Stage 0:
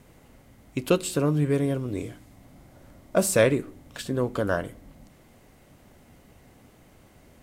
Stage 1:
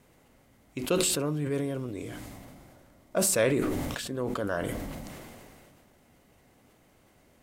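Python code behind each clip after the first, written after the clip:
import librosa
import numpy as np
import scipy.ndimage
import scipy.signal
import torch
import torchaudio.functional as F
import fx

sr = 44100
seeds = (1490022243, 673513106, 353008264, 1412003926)

y = fx.low_shelf(x, sr, hz=190.0, db=-6.0)
y = fx.sustainer(y, sr, db_per_s=24.0)
y = y * 10.0 ** (-5.5 / 20.0)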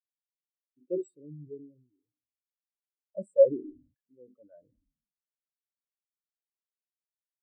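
y = fx.spectral_expand(x, sr, expansion=4.0)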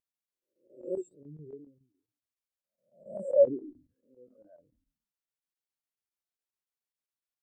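y = fx.spec_swells(x, sr, rise_s=0.45)
y = fx.vibrato(y, sr, rate_hz=4.5, depth_cents=60.0)
y = fx.chopper(y, sr, hz=7.2, depth_pct=65, duty_pct=85)
y = y * 10.0 ** (-2.5 / 20.0)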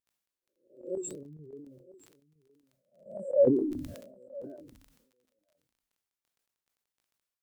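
y = x + 10.0 ** (-20.5 / 20.0) * np.pad(x, (int(966 * sr / 1000.0), 0))[:len(x)]
y = fx.dmg_crackle(y, sr, seeds[0], per_s=16.0, level_db=-56.0)
y = fx.sustainer(y, sr, db_per_s=51.0)
y = y * 10.0 ** (-2.0 / 20.0)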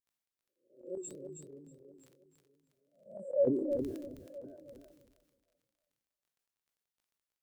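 y = fx.echo_feedback(x, sr, ms=319, feedback_pct=16, wet_db=-6.5)
y = y * 10.0 ** (-6.0 / 20.0)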